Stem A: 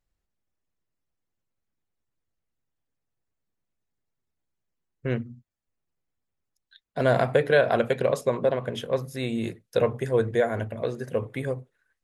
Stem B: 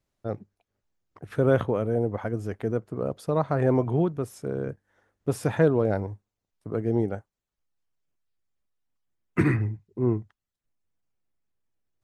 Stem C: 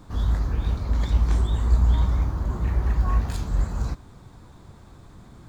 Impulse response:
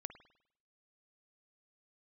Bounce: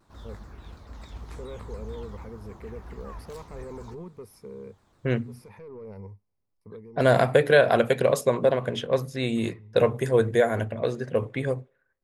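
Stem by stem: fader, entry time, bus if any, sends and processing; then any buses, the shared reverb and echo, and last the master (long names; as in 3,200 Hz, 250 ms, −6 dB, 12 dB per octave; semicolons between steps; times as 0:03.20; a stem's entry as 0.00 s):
+1.5 dB, 0.00 s, send −18 dB, low-pass that shuts in the quiet parts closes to 980 Hz, open at −22.5 dBFS; high-shelf EQ 6,500 Hz +8 dB
−11.5 dB, 0.00 s, no send, soft clipping −16 dBFS, distortion −15 dB; EQ curve with evenly spaced ripples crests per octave 0.87, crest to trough 13 dB; brickwall limiter −22 dBFS, peak gain reduction 11 dB; automatic ducking −8 dB, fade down 0.25 s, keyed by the first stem
−11.5 dB, 0.00 s, no send, low-shelf EQ 240 Hz −10 dB; pitch modulation by a square or saw wave saw down 6.9 Hz, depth 250 cents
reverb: on, pre-delay 50 ms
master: no processing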